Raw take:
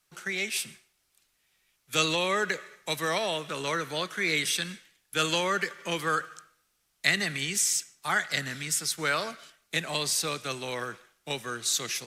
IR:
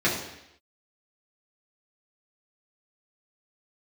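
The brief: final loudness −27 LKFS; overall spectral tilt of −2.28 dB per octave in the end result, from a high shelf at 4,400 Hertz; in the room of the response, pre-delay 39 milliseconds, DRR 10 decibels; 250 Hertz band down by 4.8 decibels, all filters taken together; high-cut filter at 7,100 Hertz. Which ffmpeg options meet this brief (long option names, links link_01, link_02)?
-filter_complex "[0:a]lowpass=7100,equalizer=frequency=250:width_type=o:gain=-8,highshelf=frequency=4400:gain=-7,asplit=2[link_01][link_02];[1:a]atrim=start_sample=2205,adelay=39[link_03];[link_02][link_03]afir=irnorm=-1:irlink=0,volume=-25dB[link_04];[link_01][link_04]amix=inputs=2:normalize=0,volume=4dB"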